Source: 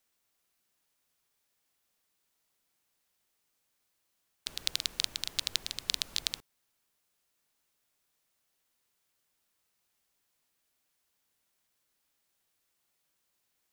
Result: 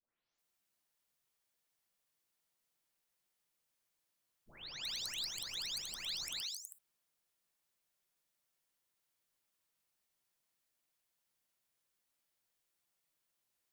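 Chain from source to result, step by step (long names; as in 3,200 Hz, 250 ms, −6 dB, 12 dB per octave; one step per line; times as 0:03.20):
every frequency bin delayed by itself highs late, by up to 386 ms
level −5.5 dB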